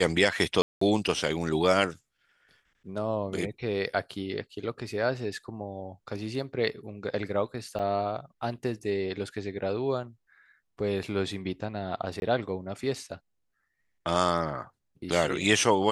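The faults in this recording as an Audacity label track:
0.620000	0.810000	drop-out 194 ms
7.790000	7.800000	drop-out 6.1 ms
12.200000	12.220000	drop-out 21 ms

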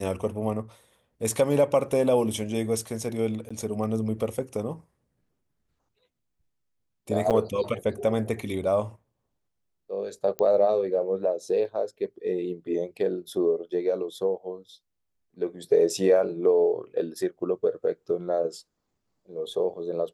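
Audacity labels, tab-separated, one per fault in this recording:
3.490000	3.500000	drop-out 15 ms
7.300000	7.310000	drop-out 7.7 ms
10.390000	10.390000	click −14 dBFS

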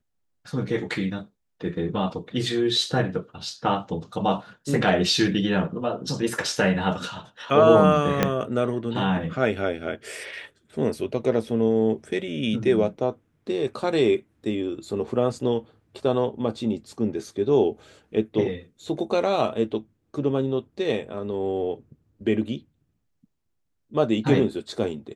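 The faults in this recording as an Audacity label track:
8.230000	8.230000	click −5 dBFS

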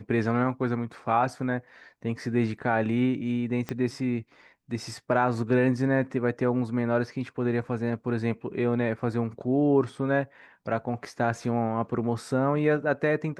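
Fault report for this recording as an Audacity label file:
3.690000	3.690000	click −17 dBFS

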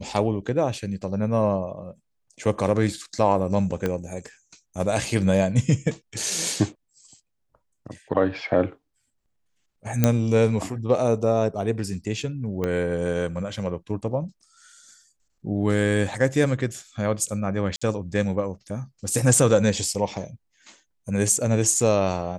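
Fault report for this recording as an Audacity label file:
3.860000	3.860000	click −12 dBFS
10.040000	10.040000	click −4 dBFS
12.640000	12.640000	click −14 dBFS
17.760000	17.820000	drop-out 55 ms

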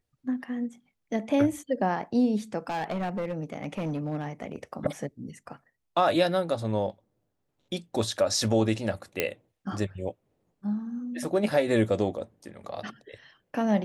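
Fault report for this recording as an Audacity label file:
2.690000	4.560000	clipping −26.5 dBFS
9.200000	9.200000	click −9 dBFS

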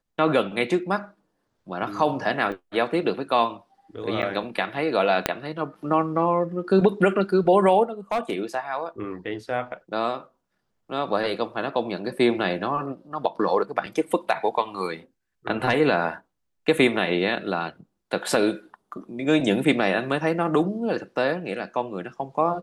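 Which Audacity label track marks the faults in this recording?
2.520000	2.520000	drop-out 4.8 ms
4.220000	4.230000	drop-out 8.6 ms
5.260000	5.260000	click −4 dBFS
8.110000	8.440000	clipping −19.5 dBFS

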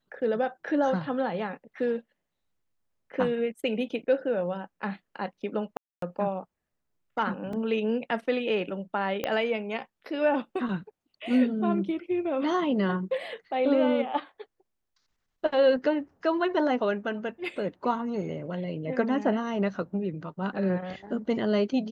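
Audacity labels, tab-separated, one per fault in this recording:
5.770000	6.020000	drop-out 253 ms
7.530000	7.530000	drop-out 3.4 ms
9.240000	9.240000	click −15 dBFS

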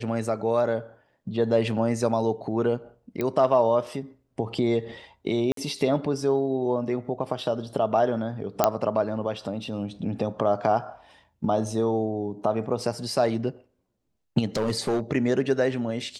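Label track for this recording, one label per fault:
3.210000	3.210000	click −15 dBFS
5.520000	5.570000	drop-out 53 ms
8.640000	8.640000	click −4 dBFS
14.560000	15.000000	clipping −20 dBFS

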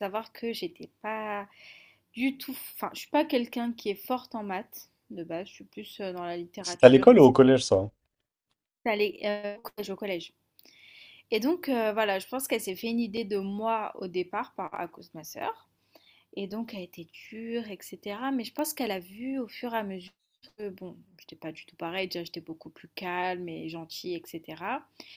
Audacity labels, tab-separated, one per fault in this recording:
13.170000	13.180000	drop-out 5.1 ms
18.590000	18.590000	click −21 dBFS

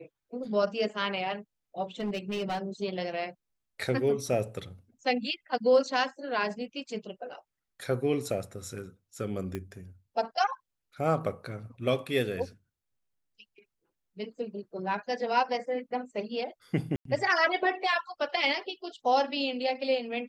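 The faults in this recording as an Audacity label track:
2.000000	2.590000	clipping −27.5 dBFS
9.550000	9.550000	click −21 dBFS
16.960000	17.050000	drop-out 93 ms

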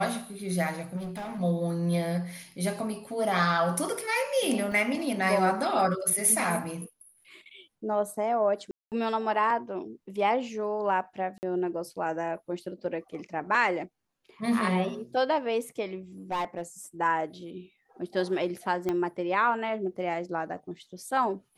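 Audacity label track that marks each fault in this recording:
0.960000	1.410000	clipping −33 dBFS
4.720000	4.720000	drop-out 2.1 ms
8.710000	8.920000	drop-out 208 ms
11.380000	11.430000	drop-out 49 ms
16.310000	16.620000	clipping −26 dBFS
18.890000	18.890000	click −17 dBFS

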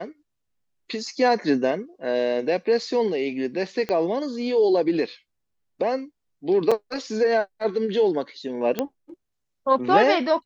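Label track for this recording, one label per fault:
3.890000	3.890000	click −14 dBFS
6.710000	6.720000	drop-out 5.3 ms
8.790000	8.790000	click −10 dBFS

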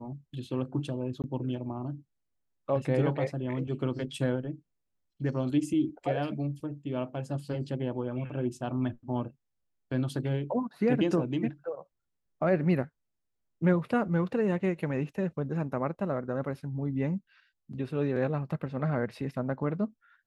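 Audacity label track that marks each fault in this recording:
1.220000	1.240000	drop-out 18 ms

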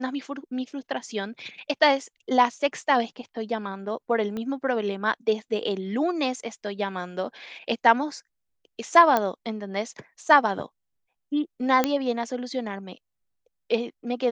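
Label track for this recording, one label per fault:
4.370000	4.370000	click −21 dBFS
9.170000	9.170000	click −10 dBFS
11.840000	11.840000	click −7 dBFS

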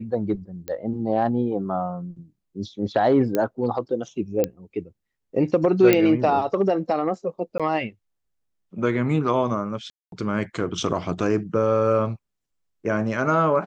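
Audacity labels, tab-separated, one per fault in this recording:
0.680000	0.680000	click −17 dBFS
3.350000	3.350000	click −10 dBFS
4.440000	4.440000	click −9 dBFS
5.930000	5.930000	click −4 dBFS
7.580000	7.600000	drop-out 16 ms
9.900000	10.120000	drop-out 222 ms

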